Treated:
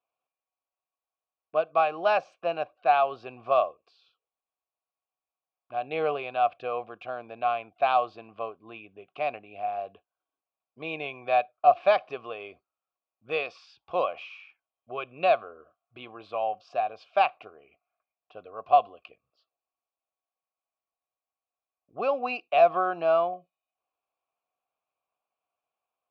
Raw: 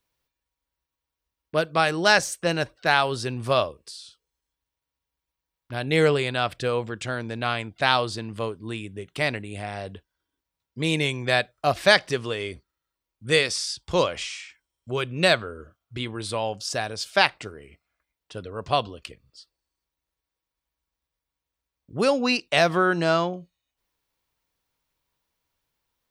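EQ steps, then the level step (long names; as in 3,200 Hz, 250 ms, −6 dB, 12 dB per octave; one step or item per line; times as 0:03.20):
formant filter a
high-frequency loss of the air 220 metres
+7.5 dB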